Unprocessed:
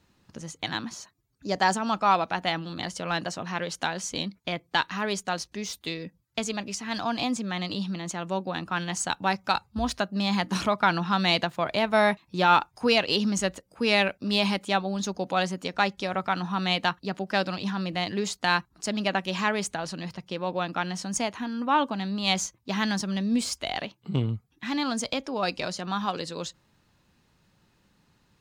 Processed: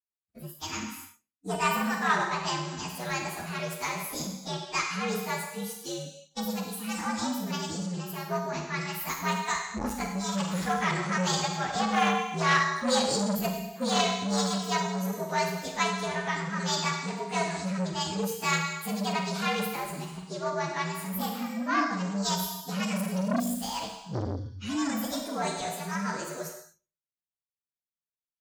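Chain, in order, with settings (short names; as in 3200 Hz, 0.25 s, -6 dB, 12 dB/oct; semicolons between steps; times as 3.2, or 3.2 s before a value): inharmonic rescaling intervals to 119%; Schroeder reverb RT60 1.1 s, combs from 33 ms, DRR 2.5 dB; expander -43 dBFS; spectral noise reduction 14 dB; core saturation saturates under 1400 Hz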